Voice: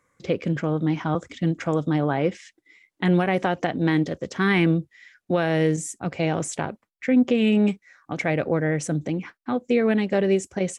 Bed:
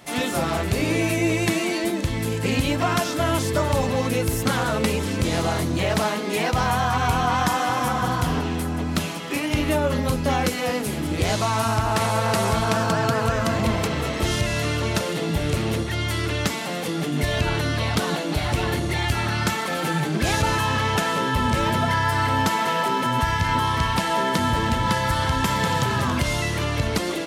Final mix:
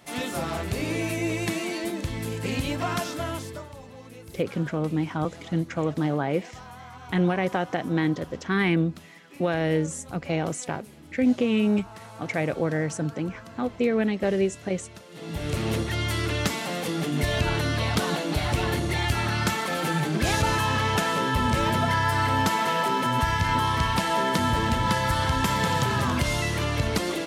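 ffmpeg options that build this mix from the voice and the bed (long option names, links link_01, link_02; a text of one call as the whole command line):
ffmpeg -i stem1.wav -i stem2.wav -filter_complex "[0:a]adelay=4100,volume=-3dB[link_01];[1:a]volume=14dB,afade=type=out:start_time=3.05:duration=0.65:silence=0.158489,afade=type=in:start_time=15.1:duration=0.62:silence=0.1[link_02];[link_01][link_02]amix=inputs=2:normalize=0" out.wav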